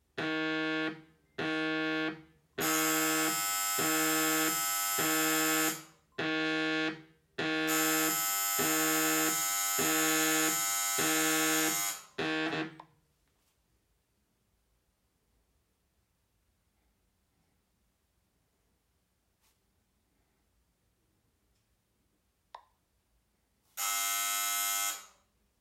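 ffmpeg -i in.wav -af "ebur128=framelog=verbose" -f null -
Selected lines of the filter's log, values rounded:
Integrated loudness:
  I:         -29.4 LUFS
  Threshold: -40.0 LUFS
Loudness range:
  LRA:         9.7 LU
  Threshold: -50.6 LUFS
  LRA low:   -37.4 LUFS
  LRA high:  -27.7 LUFS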